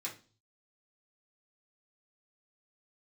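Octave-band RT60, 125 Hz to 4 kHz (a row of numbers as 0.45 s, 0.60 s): 0.80 s, 0.50 s, 0.40 s, 0.35 s, 0.30 s, 0.40 s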